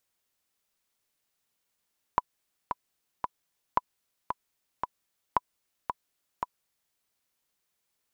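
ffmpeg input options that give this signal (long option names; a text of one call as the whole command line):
ffmpeg -f lavfi -i "aevalsrc='pow(10,(-9-7*gte(mod(t,3*60/113),60/113))/20)*sin(2*PI*991*mod(t,60/113))*exp(-6.91*mod(t,60/113)/0.03)':duration=4.77:sample_rate=44100" out.wav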